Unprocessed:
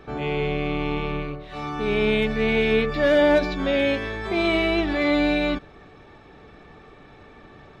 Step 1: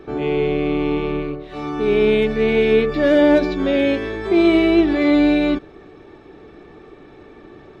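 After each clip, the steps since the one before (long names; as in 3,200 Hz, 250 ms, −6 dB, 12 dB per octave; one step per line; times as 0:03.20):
parametric band 350 Hz +11.5 dB 0.79 octaves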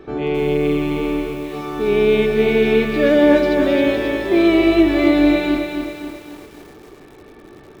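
feedback echo at a low word length 267 ms, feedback 55%, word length 7 bits, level −5.5 dB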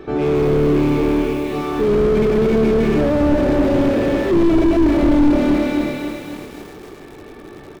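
echo with shifted repeats 159 ms, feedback 48%, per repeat −36 Hz, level −12 dB
slew-rate limiting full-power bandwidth 50 Hz
level +4.5 dB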